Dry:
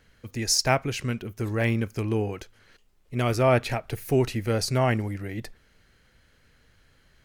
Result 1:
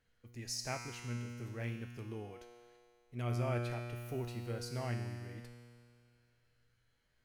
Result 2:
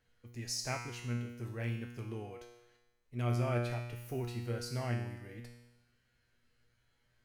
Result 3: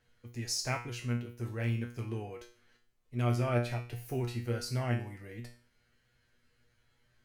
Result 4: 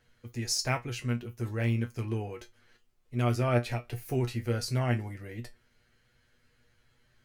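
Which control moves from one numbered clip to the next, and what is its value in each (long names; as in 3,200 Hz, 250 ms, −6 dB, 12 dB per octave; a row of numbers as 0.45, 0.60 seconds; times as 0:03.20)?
tuned comb filter, decay: 2.2, 1, 0.41, 0.16 seconds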